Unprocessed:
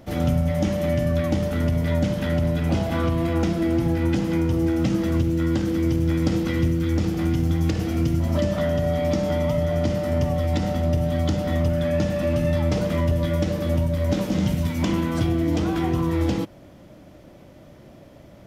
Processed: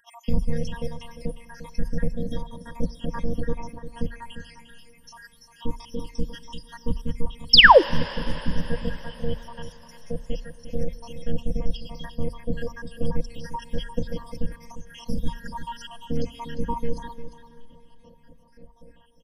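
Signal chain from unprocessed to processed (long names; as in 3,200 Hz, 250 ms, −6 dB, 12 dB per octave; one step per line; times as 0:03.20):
time-frequency cells dropped at random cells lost 81%
comb filter 1.8 ms, depth 50%
single-tap delay 337 ms −11 dB
phases set to zero 244 Hz
low-shelf EQ 230 Hz +11 dB
sound drawn into the spectrogram fall, 0:07.23–0:07.50, 350–5,900 Hz −11 dBFS
EQ curve with evenly spaced ripples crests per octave 1.2, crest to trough 14 dB
dense smooth reverb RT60 4.7 s, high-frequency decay 0.95×, DRR 17.5 dB
wrong playback speed 25 fps video run at 24 fps
level −2 dB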